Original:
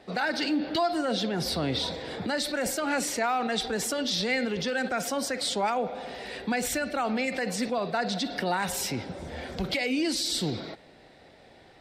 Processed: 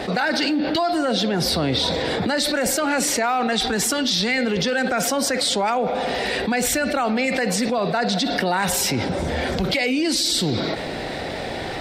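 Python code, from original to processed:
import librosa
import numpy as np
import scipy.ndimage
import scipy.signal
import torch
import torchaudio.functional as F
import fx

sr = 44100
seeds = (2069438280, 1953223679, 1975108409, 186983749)

y = fx.peak_eq(x, sr, hz=530.0, db=-7.5, octaves=0.56, at=(3.53, 4.38))
y = fx.env_flatten(y, sr, amount_pct=70)
y = y * 10.0 ** (3.5 / 20.0)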